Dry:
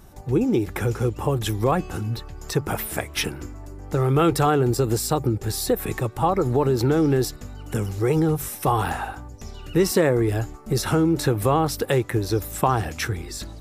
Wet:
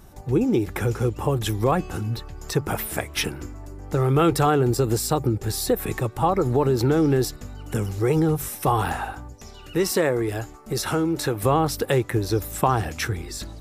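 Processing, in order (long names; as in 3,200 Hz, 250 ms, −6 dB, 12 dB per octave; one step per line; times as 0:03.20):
0:09.33–0:11.43: low-shelf EQ 290 Hz −7.5 dB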